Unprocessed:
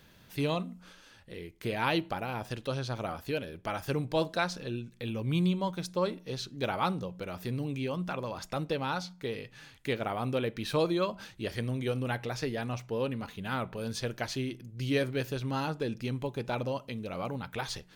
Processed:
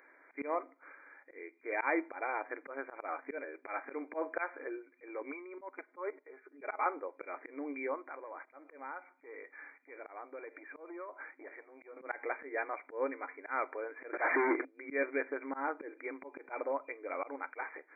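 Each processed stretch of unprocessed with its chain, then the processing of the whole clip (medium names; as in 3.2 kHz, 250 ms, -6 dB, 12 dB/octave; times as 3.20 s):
5.31–6.86 s: comb 4.8 ms, depth 56% + level held to a coarse grid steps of 16 dB
8.08–11.97 s: compression, threshold -40 dBFS + transformer saturation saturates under 470 Hz
14.13–14.65 s: low-pass that closes with the level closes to 1.6 kHz, closed at -30 dBFS + overdrive pedal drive 37 dB, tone 1.6 kHz, clips at -17.5 dBFS
whole clip: FFT band-pass 260–2400 Hz; tilt EQ +3 dB/octave; slow attack 126 ms; trim +2 dB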